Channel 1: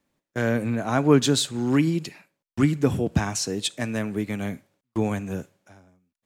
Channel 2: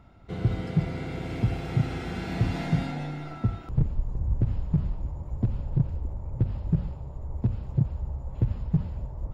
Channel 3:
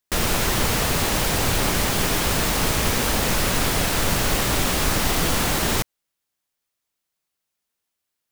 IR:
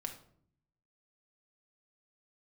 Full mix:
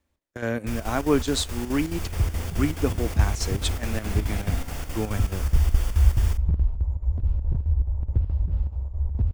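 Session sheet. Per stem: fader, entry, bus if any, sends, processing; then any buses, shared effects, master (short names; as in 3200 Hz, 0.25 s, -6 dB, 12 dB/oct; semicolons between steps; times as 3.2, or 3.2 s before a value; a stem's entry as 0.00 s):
-2.5 dB, 0.00 s, no send, dry
-4.0 dB, 1.75 s, no send, dry
-17.0 dB, 0.55 s, send -15 dB, notch 4000 Hz, Q 6.2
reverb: on, RT60 0.60 s, pre-delay 4 ms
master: resonant low shelf 100 Hz +9.5 dB, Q 3; chopper 4.7 Hz, depth 60%, duty 75%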